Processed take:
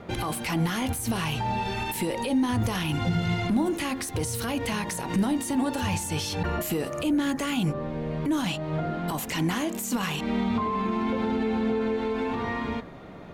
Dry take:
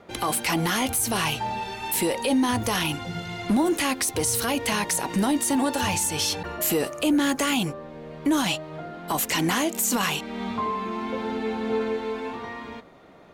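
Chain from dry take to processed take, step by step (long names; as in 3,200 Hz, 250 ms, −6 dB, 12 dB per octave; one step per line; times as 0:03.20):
downward compressor, threshold −29 dBFS, peak gain reduction 10 dB
brickwall limiter −26.5 dBFS, peak gain reduction 9 dB
bass and treble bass +8 dB, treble −4 dB
hum removal 68.44 Hz, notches 29
level +5.5 dB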